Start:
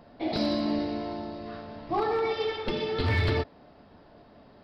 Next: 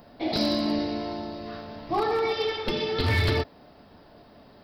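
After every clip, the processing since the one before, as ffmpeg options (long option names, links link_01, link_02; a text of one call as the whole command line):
ffmpeg -i in.wav -af "aemphasis=mode=production:type=50fm,volume=2dB" out.wav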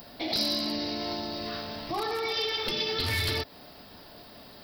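ffmpeg -i in.wav -af "alimiter=level_in=2dB:limit=-24dB:level=0:latency=1:release=148,volume=-2dB,crystalizer=i=5.5:c=0" out.wav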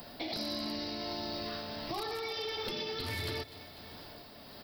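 ffmpeg -i in.wav -filter_complex "[0:a]aecho=1:1:247|494|741|988|1235:0.0891|0.0526|0.031|0.0183|0.0108,tremolo=f=1.5:d=0.33,acrossover=split=110|1000|2000|5800[link_01][link_02][link_03][link_04][link_05];[link_01]acompressor=threshold=-50dB:ratio=4[link_06];[link_02]acompressor=threshold=-38dB:ratio=4[link_07];[link_03]acompressor=threshold=-49dB:ratio=4[link_08];[link_04]acompressor=threshold=-43dB:ratio=4[link_09];[link_05]acompressor=threshold=-49dB:ratio=4[link_10];[link_06][link_07][link_08][link_09][link_10]amix=inputs=5:normalize=0" out.wav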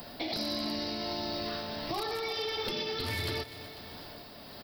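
ffmpeg -i in.wav -af "aecho=1:1:370:0.158,volume=3dB" out.wav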